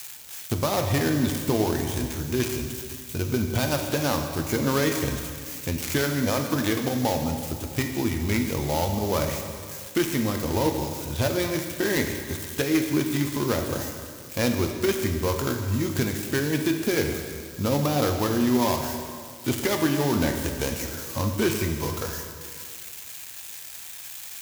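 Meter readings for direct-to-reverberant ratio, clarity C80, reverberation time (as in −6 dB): 3.5 dB, 6.5 dB, 2.1 s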